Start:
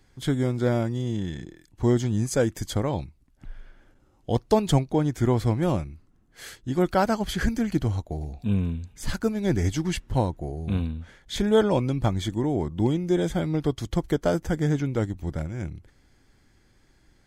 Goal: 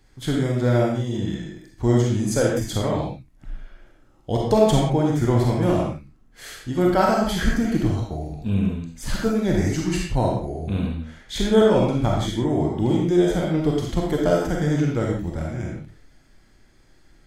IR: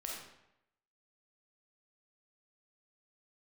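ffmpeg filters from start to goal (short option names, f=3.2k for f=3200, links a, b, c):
-filter_complex "[0:a]asettb=1/sr,asplit=3[a][b][c];[a]atrim=end=9.524[d];[b]atrim=start=9.52:end=10.32,asetpts=PTS-STARTPTS,afade=t=in:d=0.004:c=qsin,afade=t=out:st=0.796:d=0.004:c=qsin,bandreject=f=3.3k:w=7.3[e];[c]atrim=start=10.316[f];[d][e]acrossfade=d=0.004:c1=hsin:c2=qsin[g];[g][f]acrossfade=d=0.004:c1=qsin:c2=hsin[h];[1:a]atrim=start_sample=2205,afade=t=out:st=0.24:d=0.01,atrim=end_sample=11025[i];[h][i]afir=irnorm=-1:irlink=0,volume=5dB"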